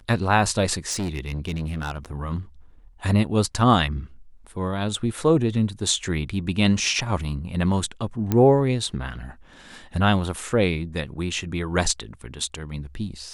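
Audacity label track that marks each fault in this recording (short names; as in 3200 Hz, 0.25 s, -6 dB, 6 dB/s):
0.900000	2.060000	clipped -23.5 dBFS
8.320000	8.320000	pop -9 dBFS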